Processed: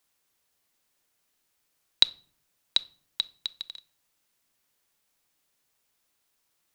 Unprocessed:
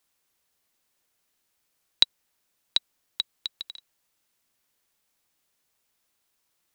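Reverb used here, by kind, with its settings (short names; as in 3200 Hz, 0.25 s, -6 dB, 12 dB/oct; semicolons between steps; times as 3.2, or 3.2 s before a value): shoebox room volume 570 m³, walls furnished, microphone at 0.3 m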